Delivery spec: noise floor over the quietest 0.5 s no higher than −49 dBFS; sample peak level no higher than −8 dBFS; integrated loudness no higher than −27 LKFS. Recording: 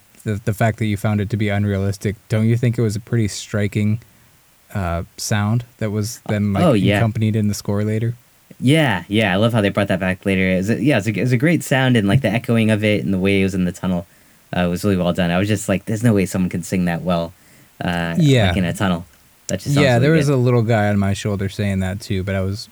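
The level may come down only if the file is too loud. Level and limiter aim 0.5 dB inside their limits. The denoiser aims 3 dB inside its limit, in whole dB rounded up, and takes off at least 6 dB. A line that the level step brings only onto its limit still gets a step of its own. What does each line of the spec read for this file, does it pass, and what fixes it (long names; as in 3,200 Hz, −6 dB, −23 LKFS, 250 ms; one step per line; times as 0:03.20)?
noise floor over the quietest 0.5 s −52 dBFS: in spec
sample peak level −3.0 dBFS: out of spec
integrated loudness −18.5 LKFS: out of spec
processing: level −9 dB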